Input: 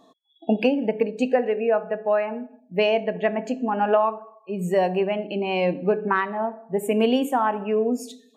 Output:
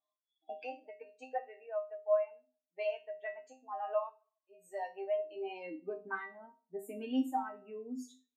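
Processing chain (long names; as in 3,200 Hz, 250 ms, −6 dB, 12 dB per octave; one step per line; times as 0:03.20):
spectral dynamics exaggerated over time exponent 1.5
mains-hum notches 50/100/150/200/250 Hz
comb filter 6.6 ms, depth 47%
high-pass filter sweep 720 Hz → 220 Hz, 0:04.82–0:06.10
resonators tuned to a chord C4 minor, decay 0.28 s
level +1 dB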